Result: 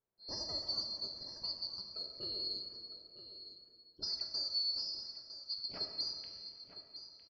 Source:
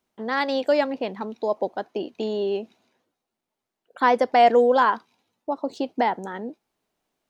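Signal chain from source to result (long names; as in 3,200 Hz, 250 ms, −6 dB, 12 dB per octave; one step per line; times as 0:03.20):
neighbouring bands swapped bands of 4,000 Hz
low-pass that shuts in the quiet parts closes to 810 Hz, open at −16.5 dBFS
downward compressor 5 to 1, threshold −32 dBFS, peak gain reduction 18 dB
low-pass filter 4,100 Hz 24 dB per octave
on a send: single-tap delay 957 ms −12 dB
on the sum: dense smooth reverb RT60 2.4 s, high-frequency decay 0.7×, DRR 2.5 dB
level −1 dB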